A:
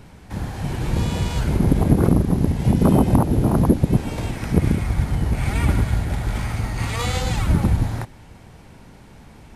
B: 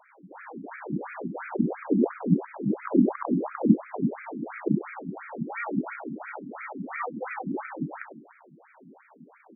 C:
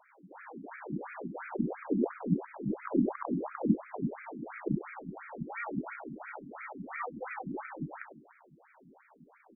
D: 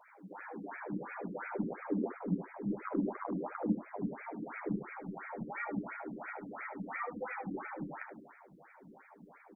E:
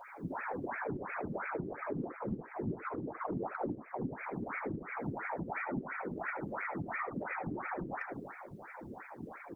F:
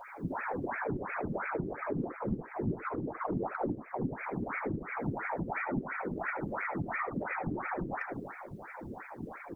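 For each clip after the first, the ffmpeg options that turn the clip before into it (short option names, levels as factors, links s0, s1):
-af "aecho=1:1:98|196|294|392|490:0.531|0.234|0.103|0.0452|0.0199,afftfilt=real='re*between(b*sr/1024,230*pow(1800/230,0.5+0.5*sin(2*PI*2.9*pts/sr))/1.41,230*pow(1800/230,0.5+0.5*sin(2*PI*2.9*pts/sr))*1.41)':imag='im*between(b*sr/1024,230*pow(1800/230,0.5+0.5*sin(2*PI*2.9*pts/sr))/1.41,230*pow(1800/230,0.5+0.5*sin(2*PI*2.9*pts/sr))*1.41)':win_size=1024:overlap=0.75"
-af "asubboost=boost=5.5:cutoff=87,volume=0.562"
-af "acompressor=threshold=0.00447:ratio=1.5,aecho=1:1:10|77:0.631|0.251,volume=1.19"
-af "acompressor=threshold=0.00562:ratio=6,afftfilt=real='hypot(re,im)*cos(2*PI*random(0))':imag='hypot(re,im)*sin(2*PI*random(1))':win_size=512:overlap=0.75,volume=5.96"
-af "lowshelf=f=70:g=8,volume=1.41"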